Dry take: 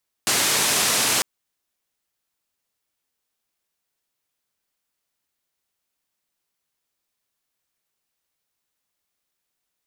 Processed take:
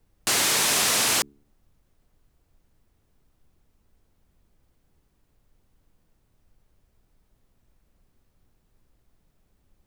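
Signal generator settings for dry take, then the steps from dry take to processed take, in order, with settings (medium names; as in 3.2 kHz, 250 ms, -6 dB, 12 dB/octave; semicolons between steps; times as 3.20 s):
noise band 120–10000 Hz, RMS -20.5 dBFS 0.95 s
de-hum 71.15 Hz, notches 6; saturation -14.5 dBFS; added noise brown -63 dBFS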